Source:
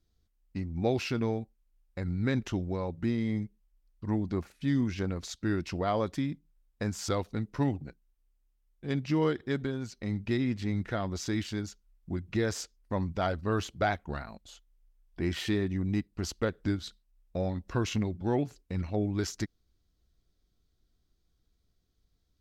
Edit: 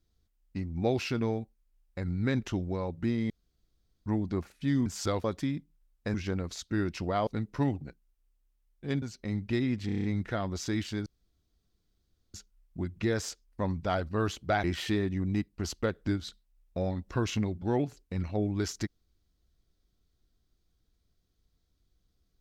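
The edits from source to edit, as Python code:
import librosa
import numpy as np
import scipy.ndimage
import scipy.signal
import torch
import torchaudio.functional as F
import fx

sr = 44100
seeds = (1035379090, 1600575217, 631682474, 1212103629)

y = fx.edit(x, sr, fx.room_tone_fill(start_s=3.3, length_s=0.76),
    fx.swap(start_s=4.86, length_s=1.13, other_s=6.89, other_length_s=0.38),
    fx.cut(start_s=9.02, length_s=0.78),
    fx.stutter(start_s=10.64, slice_s=0.03, count=7),
    fx.insert_room_tone(at_s=11.66, length_s=1.28),
    fx.cut(start_s=13.96, length_s=1.27), tone=tone)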